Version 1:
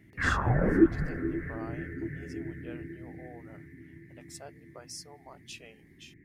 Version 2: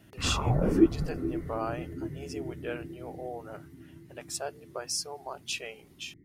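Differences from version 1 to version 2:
speech +11.0 dB; background: add polynomial smoothing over 65 samples

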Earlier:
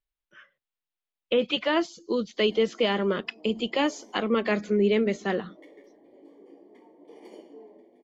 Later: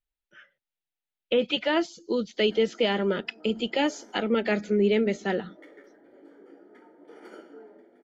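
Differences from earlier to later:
background: remove Butterworth band-stop 1400 Hz, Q 1.3; master: add Butterworth band-stop 1100 Hz, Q 5

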